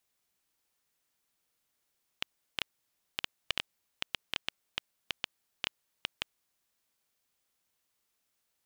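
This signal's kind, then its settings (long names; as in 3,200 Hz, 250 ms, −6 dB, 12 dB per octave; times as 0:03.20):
Geiger counter clicks 4.9 per second −12 dBFS 4.36 s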